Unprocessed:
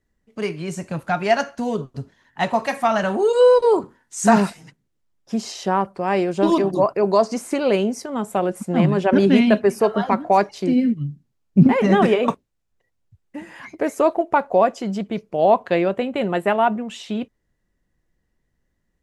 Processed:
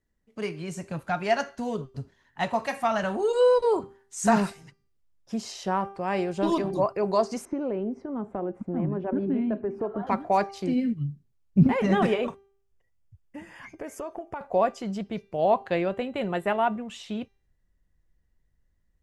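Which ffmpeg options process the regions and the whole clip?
ffmpeg -i in.wav -filter_complex "[0:a]asettb=1/sr,asplit=3[link_01][link_02][link_03];[link_01]atrim=end=7.454[link_04];[link_02]atrim=start=7.45:end=10.07,asetpts=PTS-STARTPTS,afade=type=in:duration=0.004:curve=qsin,afade=type=out:start_time=2.616:duration=0.004:curve=qsin,lowpass=1300,equalizer=frequency=300:width_type=o:width=0.87:gain=10,acompressor=threshold=-24dB:ratio=2:attack=3.2:release=140:knee=1:detection=peak[link_05];[link_03]atrim=start=10.066[link_06];[link_04][link_05]acrossfade=duration=0.004:curve1=hsin:curve2=qsin[link_07];[link_07][link_06]acrossfade=duration=0.004:curve1=qsin:curve2=hsin,asettb=1/sr,asplit=3[link_08][link_09][link_10];[link_08]atrim=end=12.274[link_11];[link_09]atrim=start=12.27:end=14.41,asetpts=PTS-STARTPTS,afade=type=in:duration=0.004:curve=qsin,afade=type=out:start_time=2.136:duration=0.004:curve=qsin,asuperstop=centerf=4000:order=4:qfactor=6.6,acompressor=threshold=-25dB:ratio=5:attack=3.2:release=140:knee=1:detection=peak[link_12];[link_10]atrim=start=14.406[link_13];[link_11][link_12]acrossfade=duration=0.004:curve1=hsin:curve2=qsin[link_14];[link_14][link_13]acrossfade=duration=0.004:curve1=qsin:curve2=hsin,bandreject=frequency=394.7:width_type=h:width=4,bandreject=frequency=789.4:width_type=h:width=4,bandreject=frequency=1184.1:width_type=h:width=4,bandreject=frequency=1578.8:width_type=h:width=4,bandreject=frequency=1973.5:width_type=h:width=4,bandreject=frequency=2368.2:width_type=h:width=4,bandreject=frequency=2762.9:width_type=h:width=4,bandreject=frequency=3157.6:width_type=h:width=4,bandreject=frequency=3552.3:width_type=h:width=4,bandreject=frequency=3947:width_type=h:width=4,bandreject=frequency=4341.7:width_type=h:width=4,bandreject=frequency=4736.4:width_type=h:width=4,bandreject=frequency=5131.1:width_type=h:width=4,bandreject=frequency=5525.8:width_type=h:width=4,bandreject=frequency=5920.5:width_type=h:width=4,bandreject=frequency=6315.2:width_type=h:width=4,asubboost=boost=2.5:cutoff=130,volume=-6dB" out.wav

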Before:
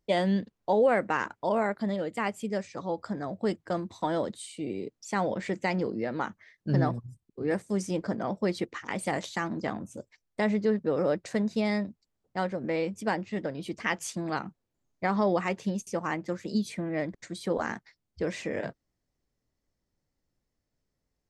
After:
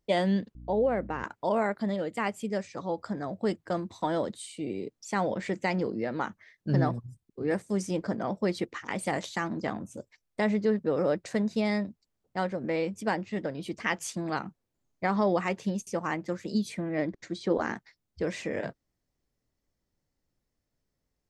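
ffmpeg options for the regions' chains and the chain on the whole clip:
ffmpeg -i in.wav -filter_complex "[0:a]asettb=1/sr,asplit=3[link_01][link_02][link_03];[link_01]atrim=end=0.554[link_04];[link_02]atrim=start=0.55:end=1.24,asetpts=PTS-STARTPTS,afade=type=in:duration=0.004:curve=qsin,afade=type=out:start_time=0.686:duration=0.004:curve=qsin,lowpass=3700,equalizer=frequency=2000:width=0.39:gain=-9.5,aeval=exprs='val(0)+0.00631*(sin(2*PI*60*n/s)+sin(2*PI*2*60*n/s)/2+sin(2*PI*3*60*n/s)/3+sin(2*PI*4*60*n/s)/4+sin(2*PI*5*60*n/s)/5)':channel_layout=same[link_05];[link_03]atrim=start=1.236[link_06];[link_04][link_05]acrossfade=duration=0.004:curve1=hsin:curve2=qsin[link_07];[link_07][link_06]acrossfade=duration=0.004:curve1=qsin:curve2=hsin,asettb=1/sr,asplit=3[link_08][link_09][link_10];[link_08]atrim=end=16.984[link_11];[link_09]atrim=start=16.98:end=17.76,asetpts=PTS-STARTPTS,afade=type=in:duration=0.004:curve=qsin,afade=type=out:start_time=0.776:duration=0.004:curve=qsin,lowpass=frequency=6600:width=0.5412,lowpass=frequency=6600:width=1.3066,equalizer=frequency=340:width=2.3:gain=5.5[link_12];[link_10]atrim=start=17.756[link_13];[link_11][link_12]acrossfade=duration=0.004:curve1=hsin:curve2=qsin[link_14];[link_14][link_13]acrossfade=duration=0.004:curve1=qsin:curve2=hsin" out.wav

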